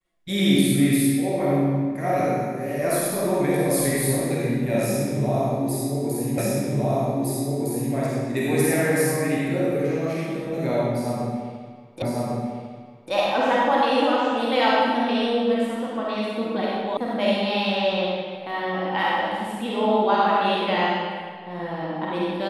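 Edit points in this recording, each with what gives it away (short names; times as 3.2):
6.38 repeat of the last 1.56 s
12.02 repeat of the last 1.1 s
16.97 sound cut off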